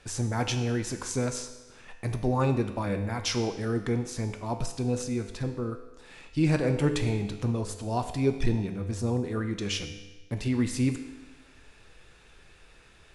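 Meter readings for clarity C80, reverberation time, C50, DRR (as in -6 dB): 10.5 dB, 1.2 s, 8.5 dB, 6.0 dB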